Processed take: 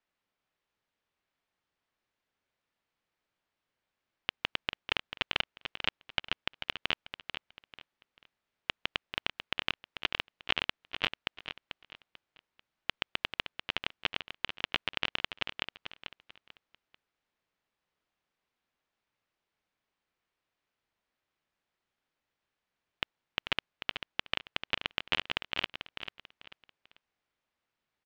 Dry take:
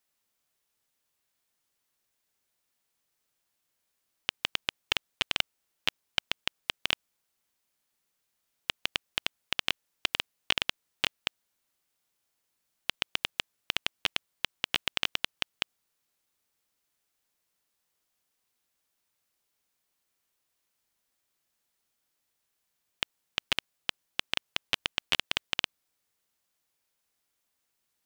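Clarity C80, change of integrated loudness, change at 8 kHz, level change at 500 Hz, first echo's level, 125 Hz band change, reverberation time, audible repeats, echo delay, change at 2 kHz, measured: no reverb, -3.0 dB, -15.0 dB, +0.5 dB, -9.0 dB, +0.5 dB, no reverb, 3, 441 ms, -1.0 dB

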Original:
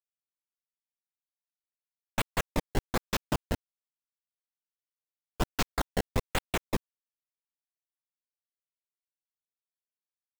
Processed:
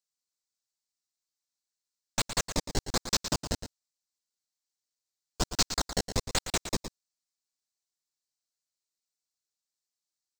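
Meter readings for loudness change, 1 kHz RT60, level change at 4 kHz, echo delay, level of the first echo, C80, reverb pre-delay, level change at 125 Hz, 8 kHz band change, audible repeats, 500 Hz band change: +2.5 dB, no reverb, +7.0 dB, 114 ms, -10.5 dB, no reverb, no reverb, -1.5 dB, +10.0 dB, 1, -1.5 dB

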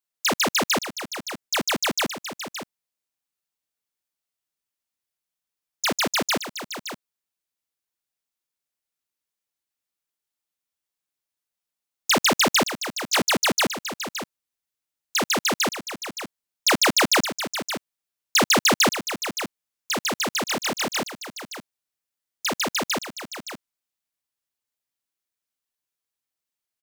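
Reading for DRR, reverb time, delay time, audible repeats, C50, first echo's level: no reverb, no reverb, 569 ms, 1, no reverb, -10.5 dB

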